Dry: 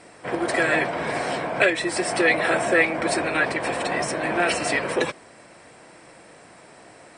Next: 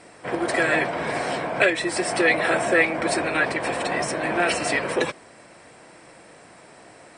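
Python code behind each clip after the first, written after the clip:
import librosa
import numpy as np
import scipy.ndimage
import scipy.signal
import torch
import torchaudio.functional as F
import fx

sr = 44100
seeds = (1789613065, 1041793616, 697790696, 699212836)

y = x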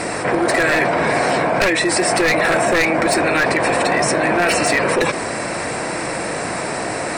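y = np.minimum(x, 2.0 * 10.0 ** (-16.5 / 20.0) - x)
y = fx.peak_eq(y, sr, hz=3200.0, db=-7.5, octaves=0.22)
y = fx.env_flatten(y, sr, amount_pct=70)
y = y * 10.0 ** (3.0 / 20.0)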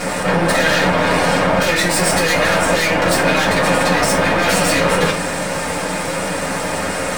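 y = np.maximum(x, 0.0)
y = fx.rev_fdn(y, sr, rt60_s=0.41, lf_ratio=1.05, hf_ratio=0.8, size_ms=33.0, drr_db=-5.5)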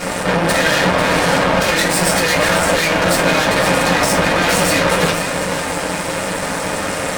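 y = fx.cheby_harmonics(x, sr, harmonics=(8,), levels_db=(-19,), full_scale_db=-1.5)
y = y + 10.0 ** (-9.5 / 20.0) * np.pad(y, (int(495 * sr / 1000.0), 0))[:len(y)]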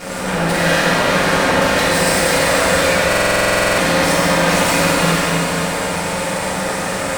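y = fx.quant_dither(x, sr, seeds[0], bits=8, dither='triangular')
y = fx.rev_schroeder(y, sr, rt60_s=3.1, comb_ms=32, drr_db=-6.0)
y = fx.buffer_glitch(y, sr, at_s=(3.08,), block=2048, repeats=14)
y = y * 10.0 ** (-7.0 / 20.0)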